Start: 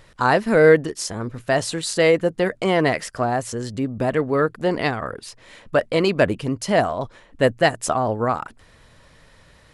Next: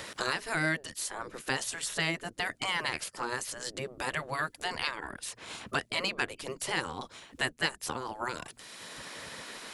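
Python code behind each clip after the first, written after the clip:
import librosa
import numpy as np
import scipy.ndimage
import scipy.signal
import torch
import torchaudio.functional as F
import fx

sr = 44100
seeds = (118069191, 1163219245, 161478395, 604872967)

y = fx.spec_gate(x, sr, threshold_db=-10, keep='weak')
y = fx.high_shelf(y, sr, hz=2900.0, db=8.5)
y = fx.band_squash(y, sr, depth_pct=70)
y = y * 10.0 ** (-7.5 / 20.0)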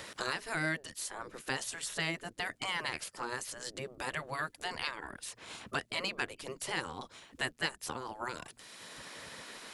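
y = fx.dmg_crackle(x, sr, seeds[0], per_s=190.0, level_db=-63.0)
y = y * 10.0 ** (-4.0 / 20.0)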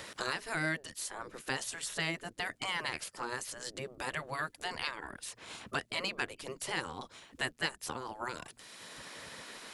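y = x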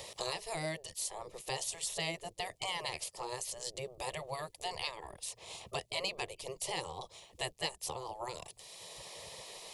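y = fx.fixed_phaser(x, sr, hz=620.0, stages=4)
y = y * 10.0 ** (2.5 / 20.0)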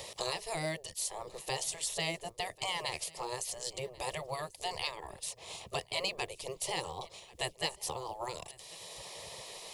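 y = fx.mod_noise(x, sr, seeds[1], snr_db=33)
y = y + 10.0 ** (-22.5 / 20.0) * np.pad(y, (int(1090 * sr / 1000.0), 0))[:len(y)]
y = y * 10.0 ** (2.0 / 20.0)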